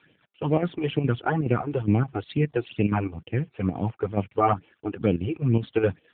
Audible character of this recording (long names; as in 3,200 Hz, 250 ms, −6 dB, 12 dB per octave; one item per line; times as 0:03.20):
a quantiser's noise floor 10 bits, dither none
chopped level 4.8 Hz, depth 60%, duty 75%
phaser sweep stages 12, 2.2 Hz, lowest notch 170–1,400 Hz
AMR narrowband